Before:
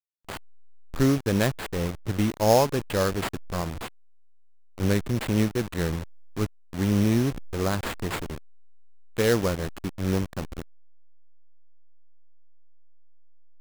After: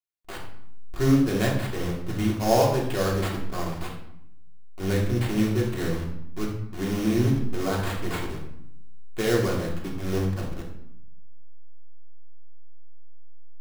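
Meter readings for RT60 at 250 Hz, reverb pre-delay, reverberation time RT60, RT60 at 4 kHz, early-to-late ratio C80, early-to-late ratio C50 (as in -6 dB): 1.1 s, 3 ms, 0.70 s, 0.55 s, 7.5 dB, 5.0 dB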